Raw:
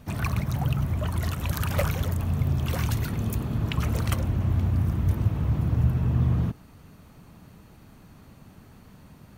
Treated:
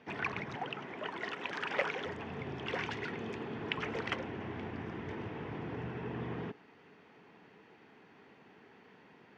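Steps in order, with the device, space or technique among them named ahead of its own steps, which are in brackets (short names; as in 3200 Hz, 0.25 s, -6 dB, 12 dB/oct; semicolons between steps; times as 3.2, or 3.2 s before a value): 0.55–2.05 HPF 220 Hz 12 dB/oct; phone earpiece (speaker cabinet 410–4300 Hz, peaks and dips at 420 Hz +6 dB, 600 Hz -8 dB, 1200 Hz -7 dB, 1900 Hz +4 dB, 4100 Hz -9 dB); high shelf 5700 Hz -4 dB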